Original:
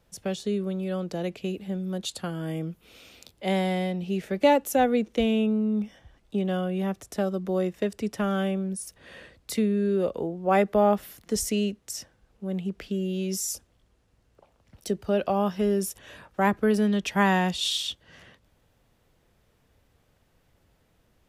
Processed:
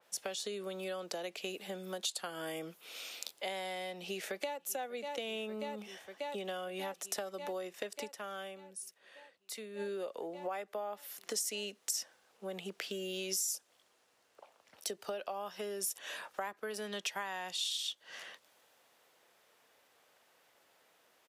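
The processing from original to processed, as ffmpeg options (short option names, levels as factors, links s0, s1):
-filter_complex "[0:a]asplit=2[s0][s1];[s1]afade=t=in:st=4:d=0.01,afade=t=out:st=4.58:d=0.01,aecho=0:1:590|1180|1770|2360|2950|3540|4130|4720|5310|5900|6490|7080:0.211349|0.169079|0.135263|0.108211|0.0865685|0.0692548|0.0554038|0.0443231|0.0354585|0.0283668|0.0226934|0.0181547[s2];[s0][s2]amix=inputs=2:normalize=0,asplit=3[s3][s4][s5];[s3]atrim=end=8.36,asetpts=PTS-STARTPTS,afade=t=out:st=8.03:d=0.33:c=exp:silence=0.188365[s6];[s4]atrim=start=8.36:end=9.49,asetpts=PTS-STARTPTS,volume=0.188[s7];[s5]atrim=start=9.49,asetpts=PTS-STARTPTS,afade=t=in:d=0.33:c=exp:silence=0.188365[s8];[s6][s7][s8]concat=n=3:v=0:a=1,highpass=600,acompressor=threshold=0.01:ratio=16,adynamicequalizer=threshold=0.00141:dfrequency=3400:dqfactor=0.7:tfrequency=3400:tqfactor=0.7:attack=5:release=100:ratio=0.375:range=2.5:mode=boostabove:tftype=highshelf,volume=1.5"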